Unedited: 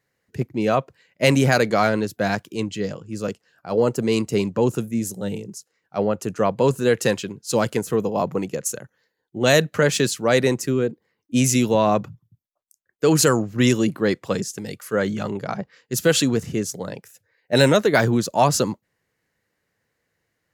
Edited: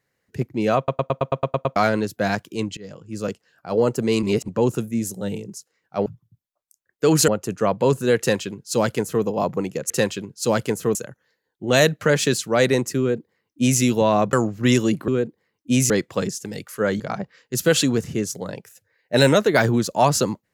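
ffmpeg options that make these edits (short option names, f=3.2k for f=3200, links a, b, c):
-filter_complex "[0:a]asplit=21[a][b][c][d][e][f][g][h][i][j][k][l][m][n][o][p][q][r][s][t][u];[a]atrim=end=0.882[v];[b]atrim=start=0.768:end=0.882[w];[c]atrim=start=0.768:end=0.882[x];[d]atrim=start=0.768:end=0.882[y];[e]atrim=start=0.768:end=0.882[z];[f]atrim=start=0.768:end=0.882[aa];[g]atrim=start=0.768:end=0.882[ab];[h]atrim=start=0.768:end=0.882[ac];[i]atrim=start=0.768:end=0.882[ad];[j]atrim=start=1.758:end=2.77,asetpts=PTS-STARTPTS,afade=t=out:st=1.008:d=0.004:c=hsin:silence=0.0841395[ae];[k]atrim=start=2.77:end=4.232,asetpts=PTS-STARTPTS,afade=t=in:d=0.42:silence=0.0841395[af];[l]atrim=start=4.228:end=4.482,asetpts=PTS-STARTPTS,areverse[ag];[m]atrim=start=4.478:end=6.062[ah];[n]atrim=start=12.058:end=13.282[ai];[o]atrim=start=6.058:end=8.682[aj];[p]atrim=start=6.968:end=8.022[ak];[q]atrim=start=8.678:end=12.062[al];[r]atrim=start=13.278:end=14.032[am];[s]atrim=start=10.718:end=11.542[an];[t]atrim=start=14.028:end=15.132[ao];[u]atrim=start=15.388[ap];[v][w]acrossfade=d=0.004:c1=hsin:c2=hsin[aq];[aq][x]acrossfade=d=0.004:c1=hsin:c2=hsin[ar];[ar][y]acrossfade=d=0.004:c1=hsin:c2=hsin[as];[as][z]acrossfade=d=0.004:c1=hsin:c2=hsin[at];[at][aa]acrossfade=d=0.004:c1=hsin:c2=hsin[au];[au][ab]acrossfade=d=0.004:c1=hsin:c2=hsin[av];[av][ac]acrossfade=d=0.004:c1=hsin:c2=hsin[aw];[aw][ad]acrossfade=d=0.004:c1=hsin:c2=hsin[ax];[ae][af]concat=n=2:v=0:a=1[ay];[ax][ay]acrossfade=d=0.004:c1=hsin:c2=hsin[az];[az][ag]acrossfade=d=0.004:c1=hsin:c2=hsin[ba];[ba][ah]acrossfade=d=0.004:c1=hsin:c2=hsin[bb];[bb][ai]acrossfade=d=0.004:c1=hsin:c2=hsin[bc];[bc][aj]acrossfade=d=0.004:c1=hsin:c2=hsin[bd];[bd][ak]acrossfade=d=0.004:c1=hsin:c2=hsin[be];[be][al]acrossfade=d=0.004:c1=hsin:c2=hsin[bf];[bf][am]acrossfade=d=0.004:c1=hsin:c2=hsin[bg];[bg][an]acrossfade=d=0.004:c1=hsin:c2=hsin[bh];[bh][ao]acrossfade=d=0.004:c1=hsin:c2=hsin[bi];[bi][ap]acrossfade=d=0.004:c1=hsin:c2=hsin"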